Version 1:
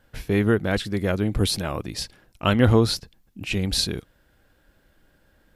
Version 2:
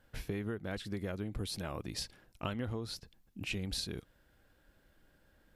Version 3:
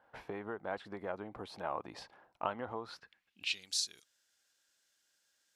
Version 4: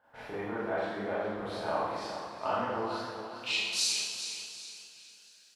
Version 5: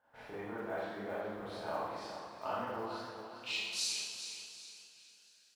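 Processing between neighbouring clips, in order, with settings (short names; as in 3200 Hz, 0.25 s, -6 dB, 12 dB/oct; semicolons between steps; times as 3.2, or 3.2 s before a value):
compressor 8:1, threshold -28 dBFS, peak gain reduction 16.5 dB; gain -6.5 dB
band-pass sweep 880 Hz -> 6400 Hz, 2.79–3.71; gain +10.5 dB
feedback echo 0.732 s, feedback 27%, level -19.5 dB; Schroeder reverb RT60 1.3 s, combs from 26 ms, DRR -10 dB; warbling echo 0.412 s, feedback 36%, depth 52 cents, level -9.5 dB; gain -3 dB
block floating point 7-bit; gain -6.5 dB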